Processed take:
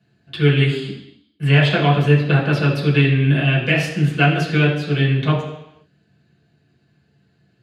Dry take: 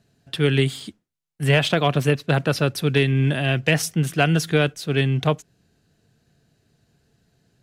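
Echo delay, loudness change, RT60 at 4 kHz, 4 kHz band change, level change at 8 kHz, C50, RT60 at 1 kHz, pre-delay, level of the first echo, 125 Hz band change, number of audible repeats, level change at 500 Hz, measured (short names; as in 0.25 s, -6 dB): none, +4.0 dB, 0.90 s, +1.5 dB, n/a, 5.5 dB, 0.85 s, 3 ms, none, +5.5 dB, none, +1.0 dB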